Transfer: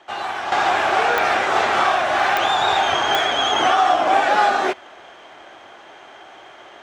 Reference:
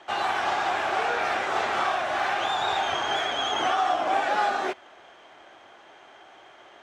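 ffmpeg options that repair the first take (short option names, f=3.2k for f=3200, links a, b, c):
-af "adeclick=t=4,asetnsamples=n=441:p=0,asendcmd='0.52 volume volume -8dB',volume=0dB"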